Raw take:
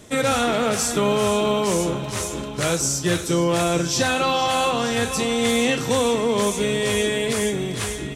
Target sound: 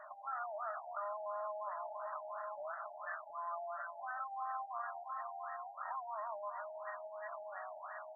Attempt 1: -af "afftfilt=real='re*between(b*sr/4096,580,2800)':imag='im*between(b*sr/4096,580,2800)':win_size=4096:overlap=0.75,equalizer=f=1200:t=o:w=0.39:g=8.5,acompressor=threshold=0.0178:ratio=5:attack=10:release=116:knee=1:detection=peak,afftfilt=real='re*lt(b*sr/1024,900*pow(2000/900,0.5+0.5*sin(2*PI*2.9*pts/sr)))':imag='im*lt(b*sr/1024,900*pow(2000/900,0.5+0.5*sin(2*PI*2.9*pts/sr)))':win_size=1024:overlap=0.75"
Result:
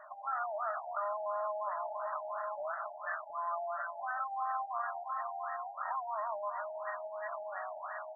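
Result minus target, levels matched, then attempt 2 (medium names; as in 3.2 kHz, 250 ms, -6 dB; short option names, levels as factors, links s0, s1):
compression: peak gain reduction -5.5 dB
-af "afftfilt=real='re*between(b*sr/4096,580,2800)':imag='im*between(b*sr/4096,580,2800)':win_size=4096:overlap=0.75,equalizer=f=1200:t=o:w=0.39:g=8.5,acompressor=threshold=0.00794:ratio=5:attack=10:release=116:knee=1:detection=peak,afftfilt=real='re*lt(b*sr/1024,900*pow(2000/900,0.5+0.5*sin(2*PI*2.9*pts/sr)))':imag='im*lt(b*sr/1024,900*pow(2000/900,0.5+0.5*sin(2*PI*2.9*pts/sr)))':win_size=1024:overlap=0.75"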